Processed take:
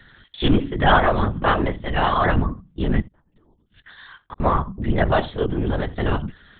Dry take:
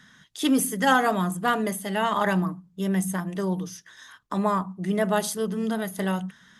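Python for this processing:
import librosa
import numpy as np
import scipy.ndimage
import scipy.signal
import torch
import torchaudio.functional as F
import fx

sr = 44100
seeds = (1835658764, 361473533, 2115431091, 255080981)

y = fx.gate_flip(x, sr, shuts_db=-25.0, range_db=-37, at=(3.0, 4.41))
y = y + 10.0 ** (-22.5 / 20.0) * np.pad(y, (int(74 * sr / 1000.0), 0))[:len(y)]
y = fx.lpc_vocoder(y, sr, seeds[0], excitation='whisper', order=10)
y = y * 10.0 ** (5.0 / 20.0)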